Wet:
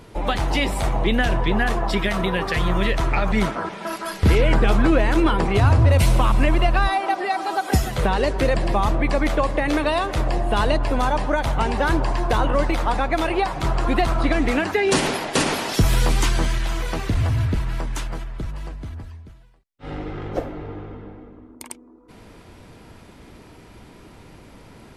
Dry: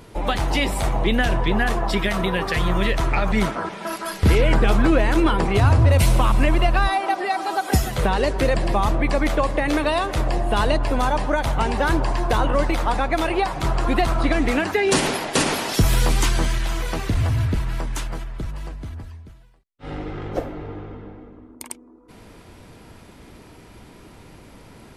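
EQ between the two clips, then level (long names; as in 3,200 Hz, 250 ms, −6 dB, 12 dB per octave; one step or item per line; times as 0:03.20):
high-shelf EQ 8,400 Hz −4.5 dB
0.0 dB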